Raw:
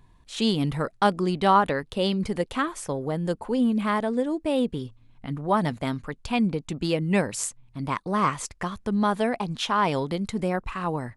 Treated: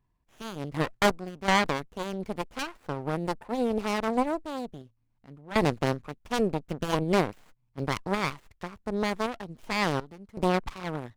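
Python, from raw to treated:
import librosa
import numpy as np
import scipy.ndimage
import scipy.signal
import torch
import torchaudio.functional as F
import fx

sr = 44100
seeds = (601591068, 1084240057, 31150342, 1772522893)

y = fx.tremolo_random(x, sr, seeds[0], hz=2.7, depth_pct=80)
y = fx.cheby_harmonics(y, sr, harmonics=(4, 7, 8), levels_db=(-10, -38, -12), full_scale_db=-9.0)
y = fx.running_max(y, sr, window=9)
y = y * 10.0 ** (-3.5 / 20.0)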